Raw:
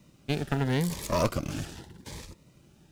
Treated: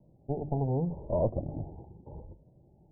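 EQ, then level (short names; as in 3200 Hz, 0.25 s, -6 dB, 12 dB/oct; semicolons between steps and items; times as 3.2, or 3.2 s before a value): steep low-pass 860 Hz 72 dB/oct; bell 240 Hz -6 dB 1.1 oct; notches 50/100/150/200/250/300 Hz; +1.0 dB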